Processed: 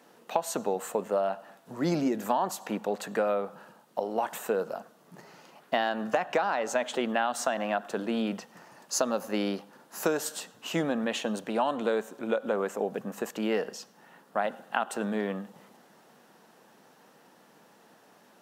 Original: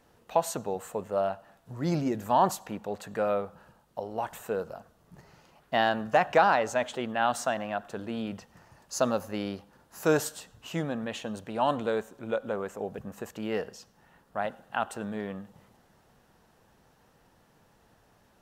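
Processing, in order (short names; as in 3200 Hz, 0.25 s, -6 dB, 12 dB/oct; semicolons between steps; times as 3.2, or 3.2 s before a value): HPF 190 Hz 24 dB/oct; compressor 12:1, threshold -29 dBFS, peak gain reduction 14 dB; gain +6 dB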